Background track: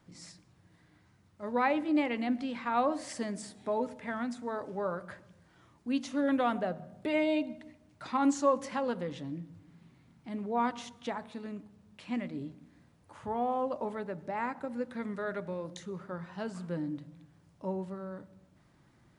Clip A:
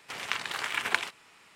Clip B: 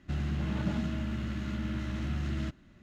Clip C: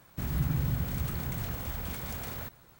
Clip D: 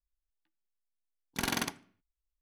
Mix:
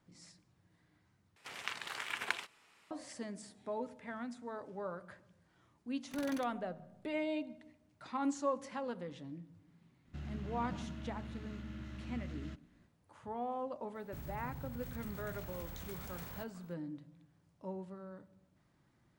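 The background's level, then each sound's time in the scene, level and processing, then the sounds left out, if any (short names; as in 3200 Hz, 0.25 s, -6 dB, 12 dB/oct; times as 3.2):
background track -8 dB
1.36 replace with A -9 dB
4.75 add D -16.5 dB + level-crossing sampler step -40.5 dBFS
10.05 add B -12 dB
13.95 add C -9 dB + compressor, threshold -33 dBFS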